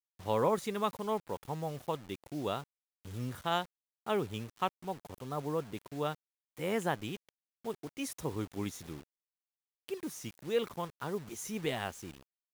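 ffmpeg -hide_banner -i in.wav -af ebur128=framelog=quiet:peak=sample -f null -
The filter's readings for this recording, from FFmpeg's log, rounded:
Integrated loudness:
  I:         -37.1 LUFS
  Threshold: -47.5 LUFS
Loudness range:
  LRA:         3.0 LU
  Threshold: -58.3 LUFS
  LRA low:   -39.9 LUFS
  LRA high:  -36.9 LUFS
Sample peak:
  Peak:      -17.6 dBFS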